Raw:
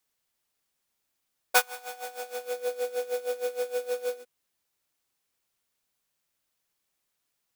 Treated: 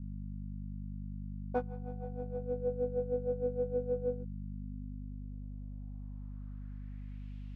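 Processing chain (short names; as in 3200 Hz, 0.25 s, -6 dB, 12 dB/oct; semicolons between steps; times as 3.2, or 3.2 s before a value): hum 50 Hz, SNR 19 dB; low-pass sweep 200 Hz -> 2800 Hz, 4.49–7.34; gain +11.5 dB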